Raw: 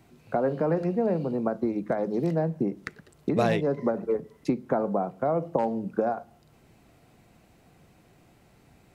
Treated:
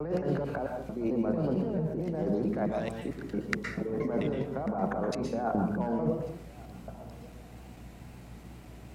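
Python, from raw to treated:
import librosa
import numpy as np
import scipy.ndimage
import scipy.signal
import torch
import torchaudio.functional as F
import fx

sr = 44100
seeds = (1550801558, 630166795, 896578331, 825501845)

p1 = fx.block_reorder(x, sr, ms=222.0, group=4)
p2 = fx.over_compress(p1, sr, threshold_db=-32.0, ratio=-1.0)
p3 = fx.add_hum(p2, sr, base_hz=60, snr_db=15)
p4 = fx.wow_flutter(p3, sr, seeds[0], rate_hz=2.1, depth_cents=88.0)
p5 = p4 + fx.echo_single(p4, sr, ms=1143, db=-23.0, dry=0)
y = fx.rev_plate(p5, sr, seeds[1], rt60_s=0.52, hf_ratio=0.85, predelay_ms=105, drr_db=3.5)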